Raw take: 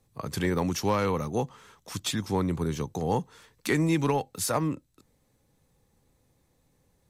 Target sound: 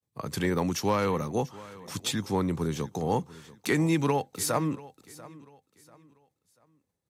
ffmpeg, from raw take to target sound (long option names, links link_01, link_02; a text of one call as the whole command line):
ffmpeg -i in.wav -af "agate=range=-33dB:threshold=-57dB:ratio=3:detection=peak,highpass=90,aecho=1:1:690|1380|2070:0.106|0.035|0.0115" out.wav